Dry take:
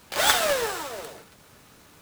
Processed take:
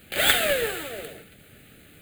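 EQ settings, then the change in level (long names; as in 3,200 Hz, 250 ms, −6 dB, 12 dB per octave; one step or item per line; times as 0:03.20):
phaser with its sweep stopped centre 2,400 Hz, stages 4
+4.5 dB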